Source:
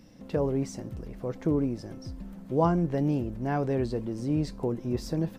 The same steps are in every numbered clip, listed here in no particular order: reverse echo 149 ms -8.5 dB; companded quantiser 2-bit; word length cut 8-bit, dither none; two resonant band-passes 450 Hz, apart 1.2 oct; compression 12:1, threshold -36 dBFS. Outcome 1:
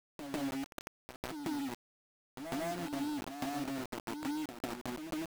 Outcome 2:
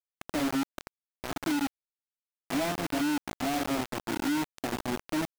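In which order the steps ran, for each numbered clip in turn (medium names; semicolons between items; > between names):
two resonant band-passes > companded quantiser > compression > reverse echo > word length cut; two resonant band-passes > compression > word length cut > reverse echo > companded quantiser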